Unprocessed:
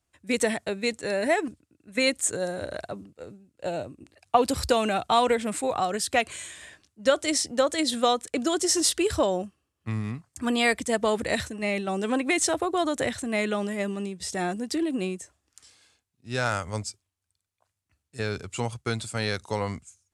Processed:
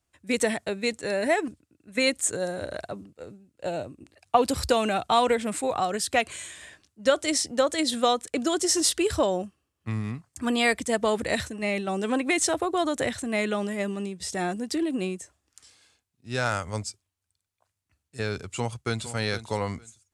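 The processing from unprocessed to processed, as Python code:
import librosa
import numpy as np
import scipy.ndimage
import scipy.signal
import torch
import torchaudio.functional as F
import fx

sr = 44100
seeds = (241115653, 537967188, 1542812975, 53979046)

y = fx.echo_throw(x, sr, start_s=18.44, length_s=0.67, ms=460, feedback_pct=20, wet_db=-12.5)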